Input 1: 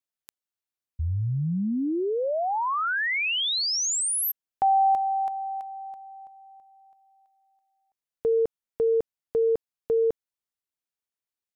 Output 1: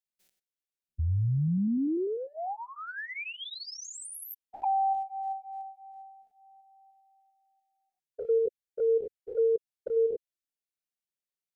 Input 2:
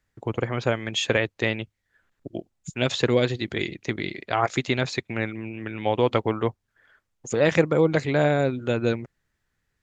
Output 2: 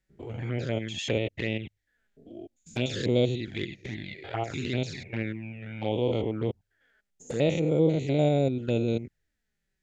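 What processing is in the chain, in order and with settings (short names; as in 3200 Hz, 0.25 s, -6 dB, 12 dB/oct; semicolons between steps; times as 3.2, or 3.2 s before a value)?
stepped spectrum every 0.1 s; bell 1100 Hz -13 dB 0.59 oct; envelope flanger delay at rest 5.4 ms, full sweep at -23 dBFS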